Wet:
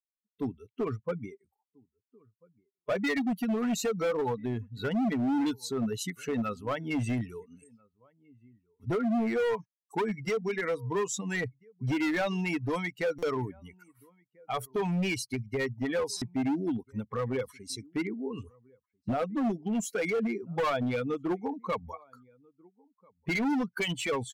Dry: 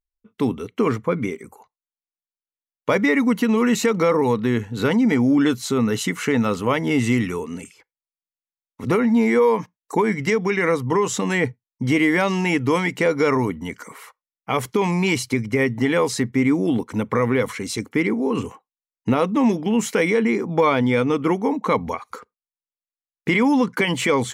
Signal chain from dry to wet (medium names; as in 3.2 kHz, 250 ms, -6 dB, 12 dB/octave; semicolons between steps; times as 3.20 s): expander on every frequency bin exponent 2; 1.34–2.98 s: treble shelf 3.2 kHz -10.5 dB; echo from a far wall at 230 m, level -29 dB; hard clipper -21.5 dBFS, distortion -10 dB; dynamic bell 690 Hz, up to +5 dB, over -51 dBFS, Q 5.4; buffer glitch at 0.34/2.80/13.18/16.17 s, samples 256, times 7; trim -4 dB